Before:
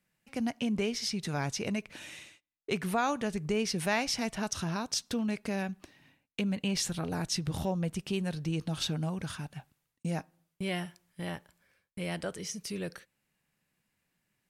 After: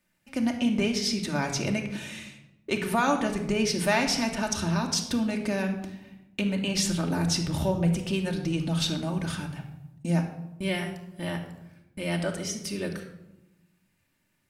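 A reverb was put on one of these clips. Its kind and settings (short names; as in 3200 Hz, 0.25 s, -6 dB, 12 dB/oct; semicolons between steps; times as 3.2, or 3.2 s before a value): shoebox room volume 3100 m³, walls furnished, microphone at 2.6 m; gain +3.5 dB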